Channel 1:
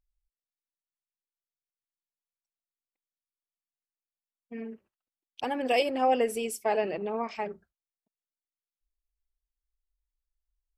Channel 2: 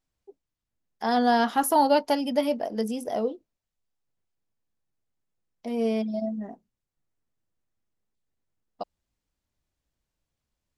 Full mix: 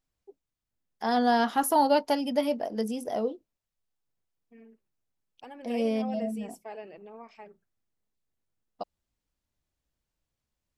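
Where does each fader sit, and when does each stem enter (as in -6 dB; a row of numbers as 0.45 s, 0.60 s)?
-14.5 dB, -2.0 dB; 0.00 s, 0.00 s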